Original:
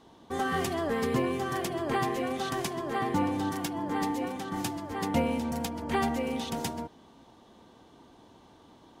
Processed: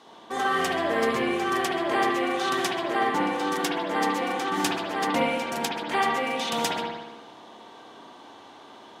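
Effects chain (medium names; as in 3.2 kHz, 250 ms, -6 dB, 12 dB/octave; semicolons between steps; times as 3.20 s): frequency weighting A; gain riding within 4 dB 0.5 s; spring tank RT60 1.1 s, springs 57 ms, chirp 20 ms, DRR -1.5 dB; trim +5 dB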